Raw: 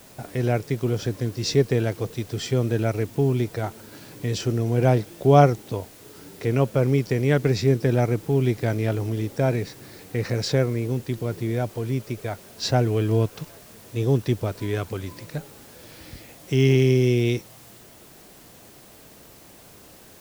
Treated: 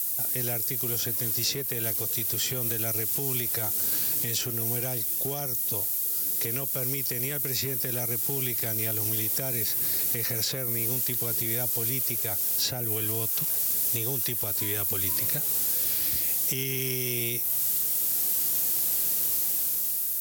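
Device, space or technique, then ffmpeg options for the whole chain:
FM broadcast chain: -filter_complex "[0:a]highpass=f=49:w=0.5412,highpass=f=49:w=1.3066,dynaudnorm=f=200:g=9:m=10dB,acrossover=split=670|3200|7500[a][b][c][d];[a]acompressor=threshold=-23dB:ratio=4[e];[b]acompressor=threshold=-32dB:ratio=4[f];[c]acompressor=threshold=-48dB:ratio=4[g];[d]acompressor=threshold=-51dB:ratio=4[h];[e][f][g][h]amix=inputs=4:normalize=0,aemphasis=mode=production:type=75fm,alimiter=limit=-17dB:level=0:latency=1:release=207,asoftclip=type=hard:threshold=-20dB,lowpass=f=15k:w=0.5412,lowpass=f=15k:w=1.3066,aemphasis=mode=production:type=75fm,volume=-6dB"

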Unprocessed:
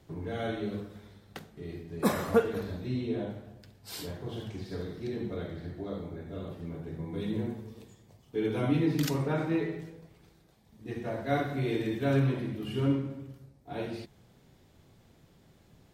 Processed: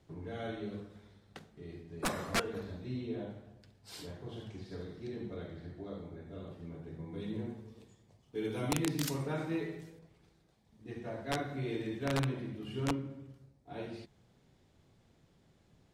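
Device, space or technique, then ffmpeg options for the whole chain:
overflowing digital effects unit: -filter_complex "[0:a]aeval=exprs='(mod(7.94*val(0)+1,2)-1)/7.94':c=same,lowpass=9.7k,asettb=1/sr,asplit=3[a][b][c];[a]atrim=end=8.354[d];[b]atrim=start=8.35:end=9.99,asetpts=PTS-STARTPTS,afade=t=in:d=0.004:c=qsin,afade=t=out:st=1.636:d=0.004:c=qsin,aemphasis=mode=production:type=50kf[e];[c]atrim=start=9.986[f];[d][e]acrossfade=d=0.004:c1=hsin:c2=qsin[g];[g][f]acrossfade=d=0.004:c1=qsin:c2=hsin,volume=-6.5dB"

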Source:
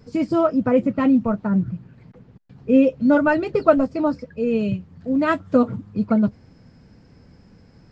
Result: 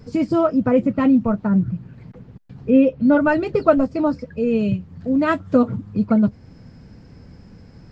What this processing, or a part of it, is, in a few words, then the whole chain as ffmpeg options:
parallel compression: -filter_complex "[0:a]asettb=1/sr,asplit=3[a][b][c];[a]atrim=end=2.704[d];[b]atrim=start=2.7:end=3.21,asetpts=PTS-STARTPTS,afade=t=in:d=0.004:c=qsin,afade=t=out:st=0.506:d=0.004:c=qsin,lowpass=4.1k[e];[c]atrim=start=3.206[f];[d][e]acrossfade=d=0.004:c1=hsin:c2=qsin[g];[g][f]acrossfade=d=0.004:c1=qsin:c2=hsin,lowshelf=f=180:g=4.5,asplit=2[h][i];[i]acompressor=threshold=-29dB:ratio=6,volume=-3dB[j];[h][j]amix=inputs=2:normalize=0,volume=-1dB"

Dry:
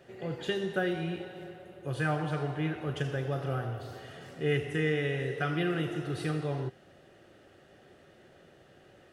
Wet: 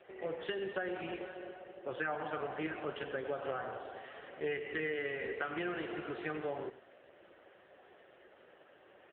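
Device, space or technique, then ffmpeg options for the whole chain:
voicemail: -filter_complex "[0:a]asplit=3[a][b][c];[a]afade=t=out:st=4.12:d=0.02[d];[b]lowpass=5.7k,afade=t=in:st=4.12:d=0.02,afade=t=out:st=4.73:d=0.02[e];[c]afade=t=in:st=4.73:d=0.02[f];[d][e][f]amix=inputs=3:normalize=0,highpass=440,lowpass=3.1k,aecho=1:1:101:0.158,acompressor=threshold=-35dB:ratio=10,volume=3.5dB" -ar 8000 -c:a libopencore_amrnb -b:a 5900

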